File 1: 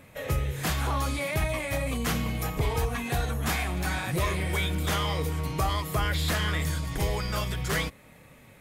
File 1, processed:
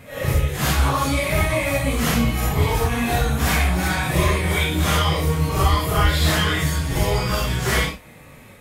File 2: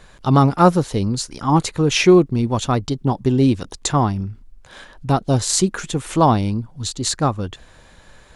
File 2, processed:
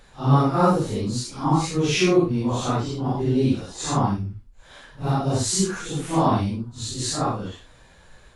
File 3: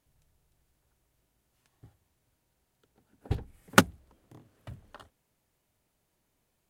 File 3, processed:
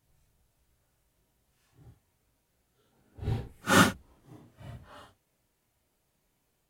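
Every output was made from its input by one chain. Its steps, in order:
phase randomisation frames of 200 ms; peak normalisation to -6 dBFS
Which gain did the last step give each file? +8.5 dB, -4.0 dB, +1.5 dB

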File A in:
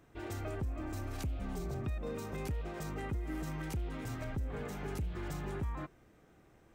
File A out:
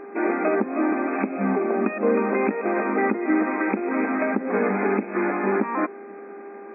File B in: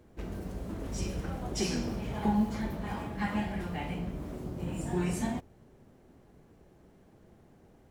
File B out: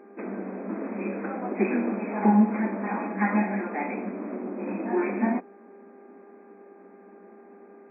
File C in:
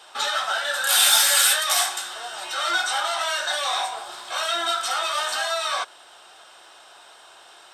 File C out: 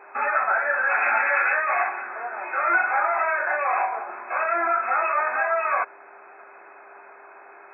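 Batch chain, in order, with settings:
mains buzz 400 Hz, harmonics 4, -61 dBFS -9 dB/octave; FFT band-pass 190–2600 Hz; peak normalisation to -9 dBFS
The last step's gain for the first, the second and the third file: +20.5 dB, +8.5 dB, +4.0 dB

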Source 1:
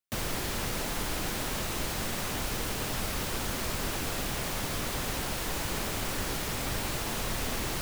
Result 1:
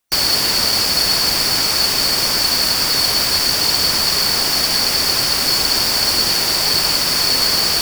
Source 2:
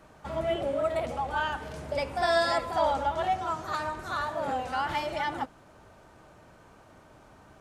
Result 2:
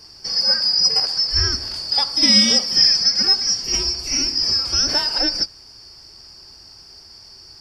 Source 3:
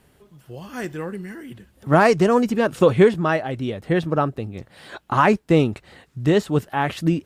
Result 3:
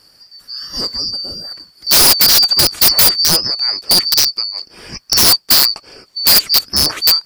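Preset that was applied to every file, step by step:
four frequency bands reordered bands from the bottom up 2341; integer overflow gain 11.5 dB; peak normalisation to -3 dBFS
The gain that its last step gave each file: +16.0 dB, +11.0 dB, +8.5 dB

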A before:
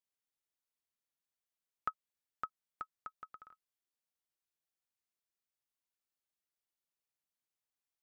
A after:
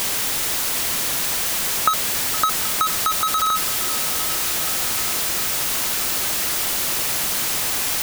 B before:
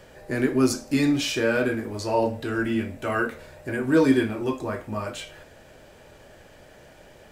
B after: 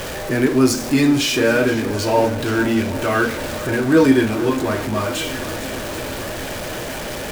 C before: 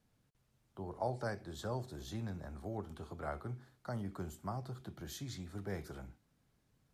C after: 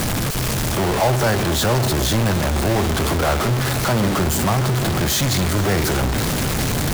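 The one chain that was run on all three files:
jump at every zero crossing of -28 dBFS; shuffle delay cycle 776 ms, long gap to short 1.5:1, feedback 64%, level -16 dB; normalise loudness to -19 LUFS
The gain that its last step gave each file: +14.5 dB, +4.5 dB, +13.5 dB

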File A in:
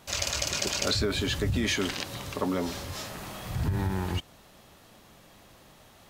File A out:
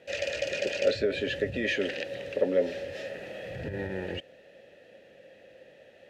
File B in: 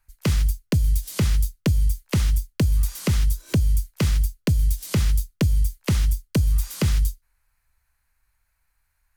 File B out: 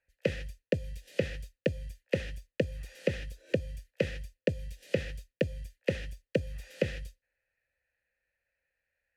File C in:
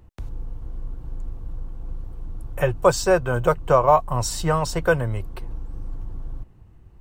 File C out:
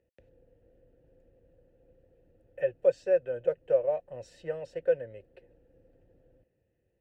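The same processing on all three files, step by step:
vowel filter e; bass shelf 310 Hz +8.5 dB; peak normalisation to -12 dBFS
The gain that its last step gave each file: +11.0 dB, +6.5 dB, -5.0 dB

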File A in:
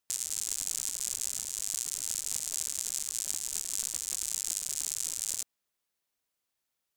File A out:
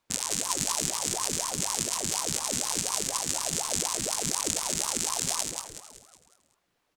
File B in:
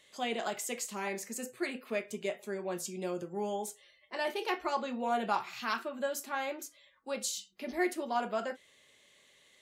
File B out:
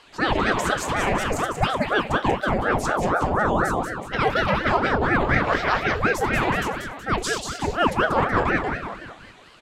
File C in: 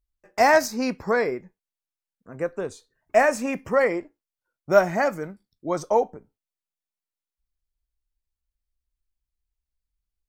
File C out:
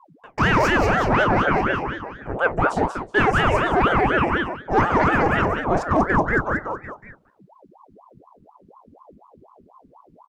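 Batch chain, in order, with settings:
RIAA curve playback; frequency-shifting echo 186 ms, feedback 45%, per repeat +63 Hz, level -5 dB; in parallel at -3.5 dB: saturation -16.5 dBFS; on the sum: bass shelf 360 Hz -7 dB; reverse; compression 6:1, threshold -27 dBFS; reverse; ring modulator with a swept carrier 610 Hz, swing 75%, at 4.1 Hz; peak normalisation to -6 dBFS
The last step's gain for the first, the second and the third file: +12.0 dB, +13.5 dB, +13.5 dB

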